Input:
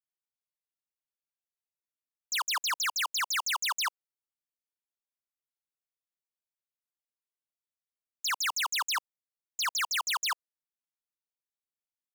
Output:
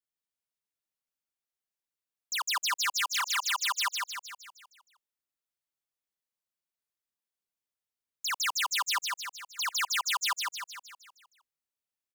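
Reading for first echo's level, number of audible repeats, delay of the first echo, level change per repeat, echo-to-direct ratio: −3.0 dB, 6, 155 ms, −5.5 dB, −1.5 dB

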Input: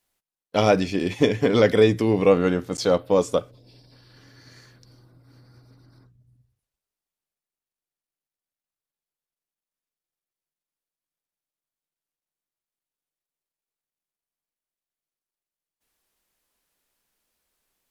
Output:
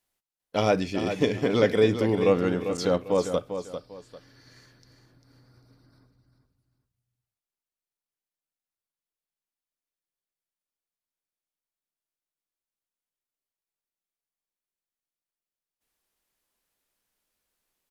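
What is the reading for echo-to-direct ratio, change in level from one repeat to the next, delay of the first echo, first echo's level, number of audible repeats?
−8.5 dB, −11.0 dB, 397 ms, −9.0 dB, 2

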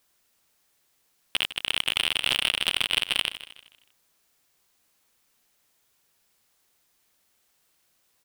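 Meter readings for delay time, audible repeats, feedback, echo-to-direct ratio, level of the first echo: 156 ms, 3, 38%, −13.5 dB, −14.0 dB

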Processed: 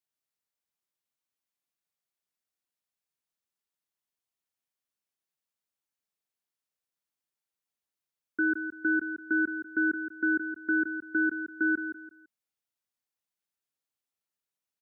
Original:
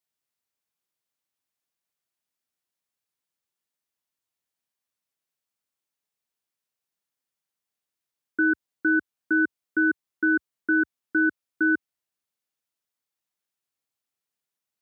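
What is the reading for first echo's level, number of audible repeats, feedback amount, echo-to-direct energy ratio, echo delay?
−9.0 dB, 3, 28%, −8.5 dB, 168 ms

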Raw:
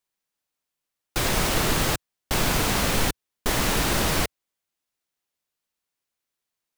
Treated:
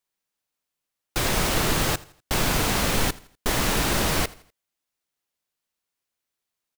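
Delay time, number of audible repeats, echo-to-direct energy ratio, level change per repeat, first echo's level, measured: 82 ms, 2, −20.5 dB, −8.0 dB, −21.0 dB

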